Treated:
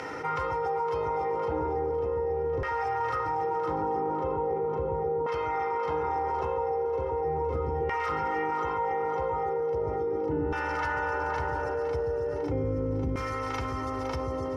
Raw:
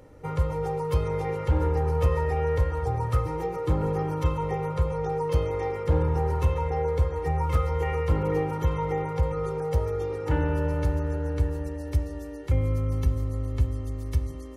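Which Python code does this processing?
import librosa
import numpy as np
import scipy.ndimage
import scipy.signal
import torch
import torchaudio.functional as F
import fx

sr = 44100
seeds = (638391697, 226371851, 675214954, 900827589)

y = fx.notch_comb(x, sr, f0_hz=570.0)
y = fx.echo_split(y, sr, split_hz=440.0, low_ms=130, high_ms=511, feedback_pct=52, wet_db=-3.5)
y = fx.filter_lfo_bandpass(y, sr, shape='saw_down', hz=0.38, low_hz=300.0, high_hz=1800.0, q=1.1)
y = fx.high_shelf(y, sr, hz=3300.0, db=-9.5, at=(3.99, 5.88))
y = fx.rider(y, sr, range_db=5, speed_s=0.5)
y = fx.peak_eq(y, sr, hz=5400.0, db=11.5, octaves=0.24)
y = fx.env_flatten(y, sr, amount_pct=70)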